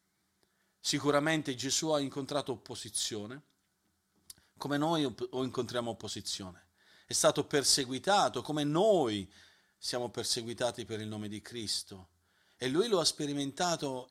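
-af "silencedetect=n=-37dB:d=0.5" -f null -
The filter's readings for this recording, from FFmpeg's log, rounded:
silence_start: 0.00
silence_end: 0.85 | silence_duration: 0.85
silence_start: 3.35
silence_end: 4.30 | silence_duration: 0.95
silence_start: 6.50
silence_end: 7.11 | silence_duration: 0.61
silence_start: 9.23
silence_end: 9.84 | silence_duration: 0.61
silence_start: 11.96
silence_end: 12.62 | silence_duration: 0.66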